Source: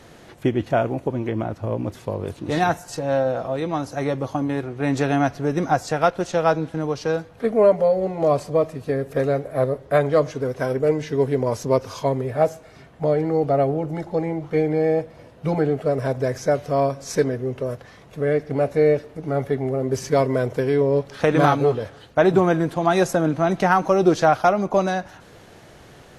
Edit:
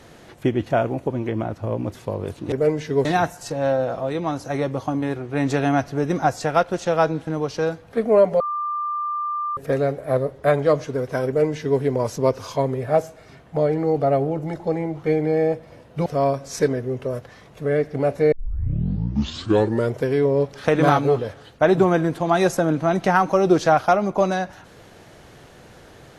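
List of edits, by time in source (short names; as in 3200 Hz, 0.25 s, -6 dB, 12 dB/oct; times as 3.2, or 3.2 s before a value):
7.87–9.04 bleep 1190 Hz -22.5 dBFS
10.74–11.27 copy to 2.52
15.53–16.62 cut
18.88 tape start 1.64 s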